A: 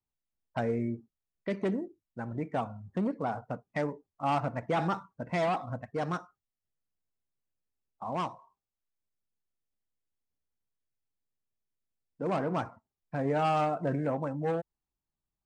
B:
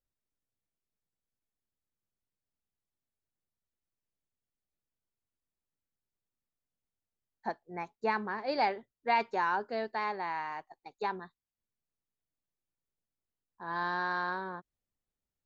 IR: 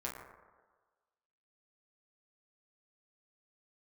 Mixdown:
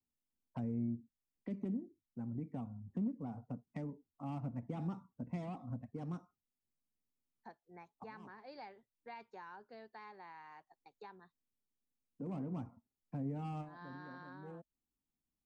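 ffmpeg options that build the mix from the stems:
-filter_complex "[0:a]equalizer=frequency=250:width_type=o:width=0.67:gain=12,equalizer=frequency=1600:width_type=o:width=0.67:gain=-9,equalizer=frequency=4000:width_type=o:width=0.67:gain=-5,volume=-4dB[link_01];[1:a]agate=range=-10dB:threshold=-58dB:ratio=16:detection=peak,volume=-12dB,asplit=2[link_02][link_03];[link_03]apad=whole_len=681356[link_04];[link_01][link_04]sidechaincompress=threshold=-57dB:ratio=8:attack=7.6:release=220[link_05];[link_05][link_02]amix=inputs=2:normalize=0,bandreject=frequency=630:width=13,acrossover=split=160[link_06][link_07];[link_07]acompressor=threshold=-52dB:ratio=2.5[link_08];[link_06][link_08]amix=inputs=2:normalize=0,aeval=exprs='0.0355*(cos(1*acos(clip(val(0)/0.0355,-1,1)))-cos(1*PI/2))+0.000708*(cos(3*acos(clip(val(0)/0.0355,-1,1)))-cos(3*PI/2))':channel_layout=same"

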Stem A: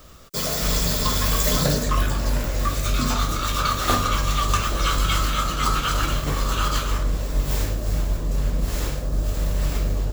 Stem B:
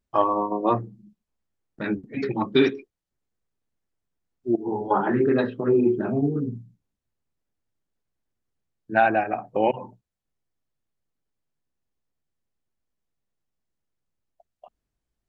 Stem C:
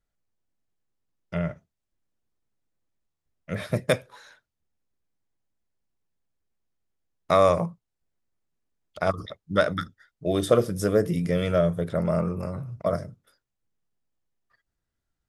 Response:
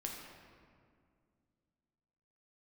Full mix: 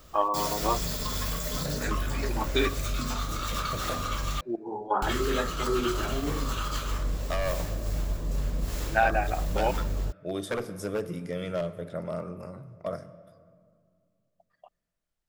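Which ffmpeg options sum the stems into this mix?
-filter_complex "[0:a]volume=-6dB,asplit=3[link_01][link_02][link_03];[link_01]atrim=end=4.41,asetpts=PTS-STARTPTS,afade=type=out:start_time=4.406:duration=0.004:curve=hsin[link_04];[link_02]atrim=start=4.41:end=5.02,asetpts=PTS-STARTPTS,volume=0[link_05];[link_03]atrim=start=5.02,asetpts=PTS-STARTPTS,afade=type=in:duration=0.004:curve=hsin[link_06];[link_04][link_05][link_06]concat=n=3:v=0:a=1[link_07];[1:a]equalizer=frequency=150:width=0.43:gain=-12.5,volume=-2dB[link_08];[2:a]lowshelf=frequency=97:gain=-10,aeval=exprs='0.178*(abs(mod(val(0)/0.178+3,4)-2)-1)':channel_layout=same,volume=-9.5dB,asplit=2[link_09][link_10];[link_10]volume=-8dB[link_11];[link_07][link_09]amix=inputs=2:normalize=0,alimiter=limit=-20.5dB:level=0:latency=1:release=177,volume=0dB[link_12];[3:a]atrim=start_sample=2205[link_13];[link_11][link_13]afir=irnorm=-1:irlink=0[link_14];[link_08][link_12][link_14]amix=inputs=3:normalize=0"

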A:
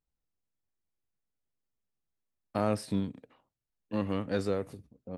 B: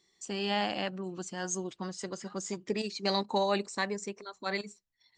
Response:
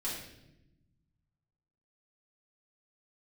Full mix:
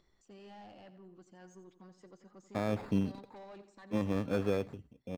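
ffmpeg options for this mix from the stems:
-filter_complex "[0:a]alimiter=limit=-20dB:level=0:latency=1:release=62,acrusher=samples=15:mix=1:aa=0.000001,volume=0.5dB[link_01];[1:a]asoftclip=type=tanh:threshold=-31dB,volume=-15dB,asplit=2[link_02][link_03];[link_03]volume=-13dB,aecho=0:1:88|176|264|352|440|528:1|0.41|0.168|0.0689|0.0283|0.0116[link_04];[link_01][link_02][link_04]amix=inputs=3:normalize=0,acompressor=mode=upward:threshold=-57dB:ratio=2.5,lowpass=frequency=1500:poles=1"

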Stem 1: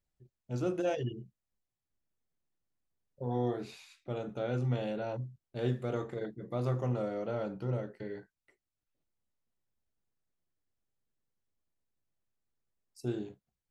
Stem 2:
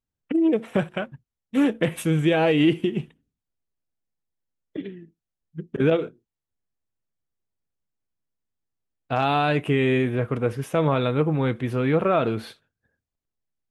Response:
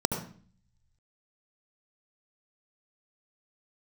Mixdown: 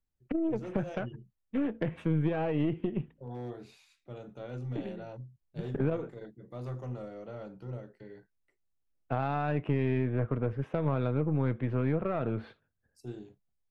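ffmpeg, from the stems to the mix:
-filter_complex "[0:a]volume=23dB,asoftclip=hard,volume=-23dB,volume=-8dB[link_01];[1:a]lowpass=1900,volume=-5.5dB[link_02];[link_01][link_02]amix=inputs=2:normalize=0,lowshelf=frequency=75:gain=8.5,acrossover=split=150[link_03][link_04];[link_04]acompressor=threshold=-30dB:ratio=4[link_05];[link_03][link_05]amix=inputs=2:normalize=0,aeval=exprs='0.211*(cos(1*acos(clip(val(0)/0.211,-1,1)))-cos(1*PI/2))+0.0106*(cos(8*acos(clip(val(0)/0.211,-1,1)))-cos(8*PI/2))':channel_layout=same"

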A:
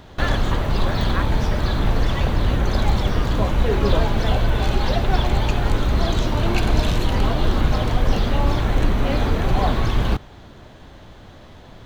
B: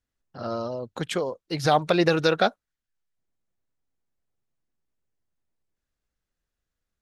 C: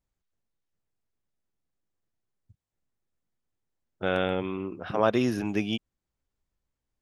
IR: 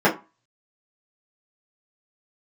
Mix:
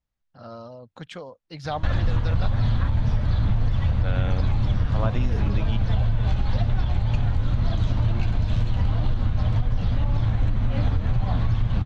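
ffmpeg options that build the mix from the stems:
-filter_complex "[0:a]equalizer=frequency=110:width=0.88:gain=10.5,flanger=delay=8.2:depth=3.1:regen=-35:speed=2:shape=sinusoidal,adelay=1650,volume=-0.5dB[link_01];[1:a]volume=-8.5dB[link_02];[2:a]volume=-1dB[link_03];[link_01][link_02]amix=inputs=2:normalize=0,lowshelf=frequency=81:gain=9,alimiter=limit=-7dB:level=0:latency=1:release=222,volume=0dB[link_04];[link_03][link_04]amix=inputs=2:normalize=0,lowpass=5400,equalizer=frequency=380:width_type=o:width=0.45:gain=-9,acompressor=threshold=-17dB:ratio=6"

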